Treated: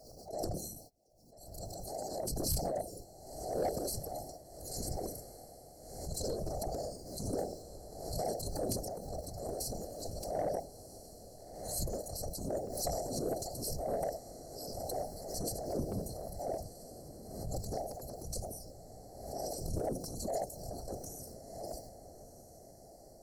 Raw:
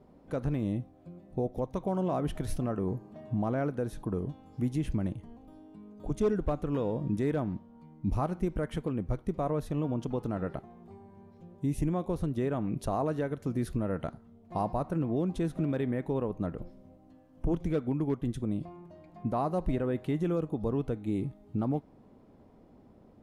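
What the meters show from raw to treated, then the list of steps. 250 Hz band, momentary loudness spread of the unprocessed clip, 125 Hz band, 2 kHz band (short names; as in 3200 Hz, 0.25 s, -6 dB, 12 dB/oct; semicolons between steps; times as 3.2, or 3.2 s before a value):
-13.5 dB, 10 LU, -11.0 dB, -14.0 dB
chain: band inversion scrambler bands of 2000 Hz; thirty-one-band EQ 800 Hz +8 dB, 2000 Hz -7 dB, 3150 Hz +6 dB; gate -43 dBFS, range -30 dB; FFT band-reject 680–4100 Hz; in parallel at -1.5 dB: compressor, threshold -56 dBFS, peak gain reduction 17 dB; on the sum: transient shaper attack -11 dB, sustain +9 dB; whisperiser; soft clip -38 dBFS, distortion -22 dB; on a send: diffused feedback echo 1.342 s, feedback 50%, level -12.5 dB; on the sum: backwards sustainer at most 53 dB/s; gain +13.5 dB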